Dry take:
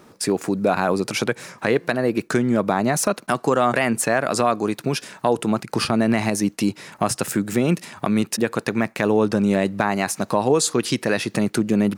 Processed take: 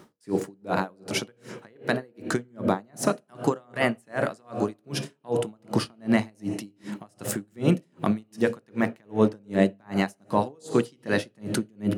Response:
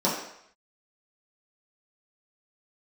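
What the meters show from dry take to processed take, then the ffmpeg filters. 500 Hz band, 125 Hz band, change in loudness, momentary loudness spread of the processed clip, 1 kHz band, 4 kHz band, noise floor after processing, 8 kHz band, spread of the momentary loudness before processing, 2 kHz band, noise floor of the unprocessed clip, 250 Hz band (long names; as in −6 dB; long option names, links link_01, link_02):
−6.5 dB, −5.0 dB, −6.5 dB, 9 LU, −8.5 dB, −8.0 dB, −65 dBFS, −12.0 dB, 5 LU, −7.0 dB, −52 dBFS, −6.0 dB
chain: -filter_complex "[0:a]asplit=2[link_01][link_02];[1:a]atrim=start_sample=2205,asetrate=23373,aresample=44100[link_03];[link_02][link_03]afir=irnorm=-1:irlink=0,volume=-24dB[link_04];[link_01][link_04]amix=inputs=2:normalize=0,aeval=exprs='val(0)*pow(10,-38*(0.5-0.5*cos(2*PI*2.6*n/s))/20)':channel_layout=same,volume=-2.5dB"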